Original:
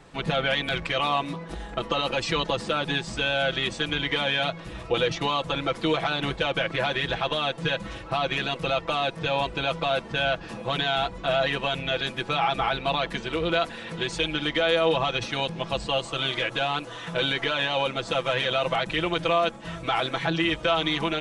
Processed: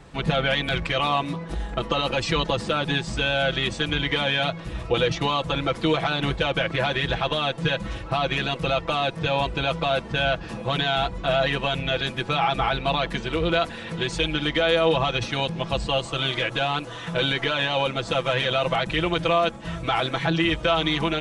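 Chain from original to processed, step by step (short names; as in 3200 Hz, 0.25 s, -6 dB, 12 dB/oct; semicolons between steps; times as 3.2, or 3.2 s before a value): bell 62 Hz +7.5 dB 2.6 oct; gain +1.5 dB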